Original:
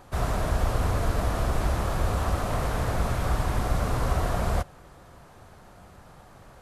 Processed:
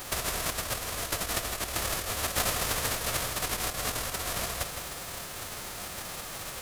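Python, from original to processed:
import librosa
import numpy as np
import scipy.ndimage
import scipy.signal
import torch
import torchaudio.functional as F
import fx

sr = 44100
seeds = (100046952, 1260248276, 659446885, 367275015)

p1 = fx.envelope_flatten(x, sr, power=0.3)
p2 = fx.over_compress(p1, sr, threshold_db=-31.0, ratio=-0.5)
p3 = p2 + fx.echo_single(p2, sr, ms=163, db=-8.0, dry=0)
y = p3 * 10.0 ** (1.0 / 20.0)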